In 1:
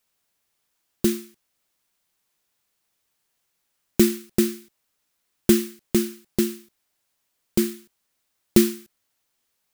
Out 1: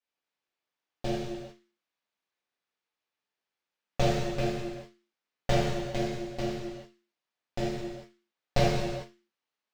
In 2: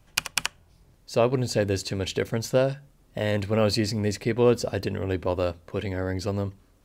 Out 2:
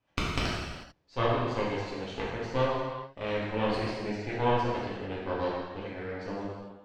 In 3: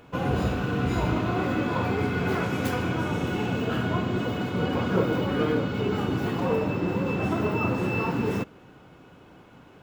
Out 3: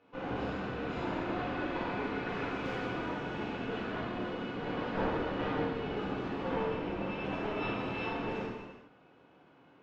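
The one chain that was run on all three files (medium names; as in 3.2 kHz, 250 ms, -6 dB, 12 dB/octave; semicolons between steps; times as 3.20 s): high-pass 320 Hz 6 dB/octave; Chebyshev shaper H 3 -7 dB, 4 -9 dB, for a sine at -2 dBFS; distance through air 170 m; gated-style reverb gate 470 ms falling, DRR -7.5 dB; trim -5.5 dB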